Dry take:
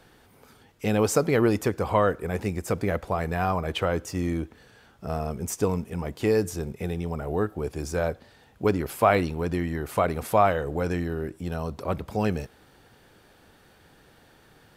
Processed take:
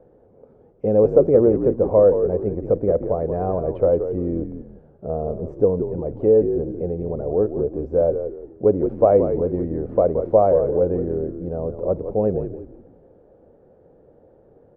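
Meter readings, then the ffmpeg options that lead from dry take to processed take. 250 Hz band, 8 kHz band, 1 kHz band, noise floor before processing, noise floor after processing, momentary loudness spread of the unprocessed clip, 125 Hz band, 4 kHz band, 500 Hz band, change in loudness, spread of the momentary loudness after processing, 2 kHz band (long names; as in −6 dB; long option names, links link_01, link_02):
+4.0 dB, below −40 dB, −2.0 dB, −57 dBFS, −54 dBFS, 10 LU, +1.5 dB, below −30 dB, +9.5 dB, +6.5 dB, 12 LU, below −15 dB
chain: -filter_complex "[0:a]lowpass=frequency=530:width_type=q:width=4,asplit=5[link_01][link_02][link_03][link_04][link_05];[link_02]adelay=174,afreqshift=-61,volume=-8.5dB[link_06];[link_03]adelay=348,afreqshift=-122,volume=-18.7dB[link_07];[link_04]adelay=522,afreqshift=-183,volume=-28.8dB[link_08];[link_05]adelay=696,afreqshift=-244,volume=-39dB[link_09];[link_01][link_06][link_07][link_08][link_09]amix=inputs=5:normalize=0"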